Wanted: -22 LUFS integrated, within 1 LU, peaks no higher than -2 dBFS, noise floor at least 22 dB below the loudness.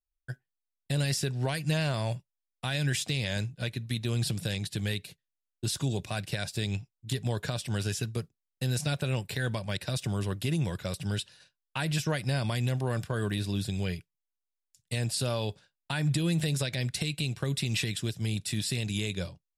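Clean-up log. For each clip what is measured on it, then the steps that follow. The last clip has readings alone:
loudness -31.5 LUFS; peak level -17.0 dBFS; loudness target -22.0 LUFS
-> trim +9.5 dB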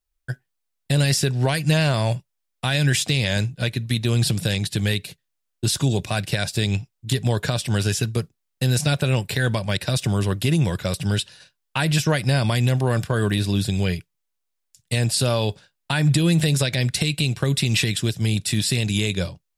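loudness -22.0 LUFS; peak level -7.5 dBFS; noise floor -77 dBFS

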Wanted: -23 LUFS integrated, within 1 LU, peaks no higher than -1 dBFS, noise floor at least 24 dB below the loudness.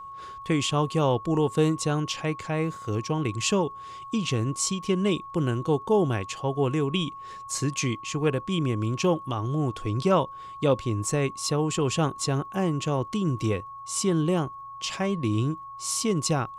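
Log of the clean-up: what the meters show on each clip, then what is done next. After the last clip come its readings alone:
tick rate 17 per s; steady tone 1.1 kHz; tone level -38 dBFS; loudness -26.5 LUFS; peak level -10.0 dBFS; loudness target -23.0 LUFS
-> de-click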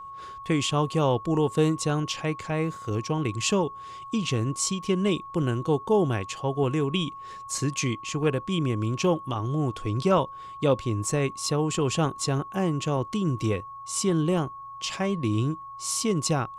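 tick rate 0 per s; steady tone 1.1 kHz; tone level -38 dBFS
-> band-stop 1.1 kHz, Q 30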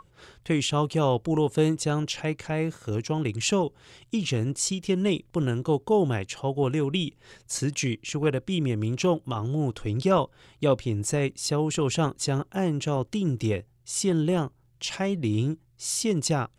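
steady tone not found; loudness -27.0 LUFS; peak level -10.0 dBFS; loudness target -23.0 LUFS
-> trim +4 dB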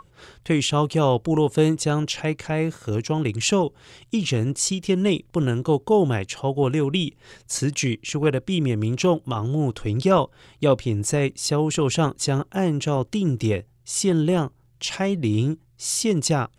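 loudness -23.0 LUFS; peak level -6.0 dBFS; noise floor -57 dBFS

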